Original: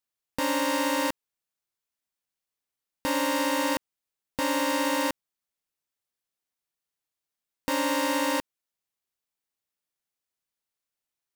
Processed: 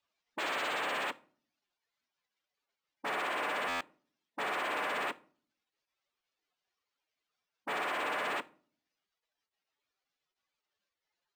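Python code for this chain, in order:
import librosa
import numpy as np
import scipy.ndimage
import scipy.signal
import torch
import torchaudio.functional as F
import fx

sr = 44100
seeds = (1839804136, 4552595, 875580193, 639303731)

y = fx.spec_expand(x, sr, power=3.4)
y = fx.rider(y, sr, range_db=4, speed_s=2.0)
y = 10.0 ** (-36.5 / 20.0) * (np.abs((y / 10.0 ** (-36.5 / 20.0) + 3.0) % 4.0 - 2.0) - 1.0)
y = fx.formant_shift(y, sr, semitones=-6)
y = fx.bandpass_edges(y, sr, low_hz=420.0, high_hz=7200.0)
y = fx.room_shoebox(y, sr, seeds[0], volume_m3=460.0, walls='furnished', distance_m=0.33)
y = fx.buffer_glitch(y, sr, at_s=(3.68,), block=512, repeats=10)
y = np.interp(np.arange(len(y)), np.arange(len(y))[::4], y[::4])
y = F.gain(torch.from_numpy(y), 8.5).numpy()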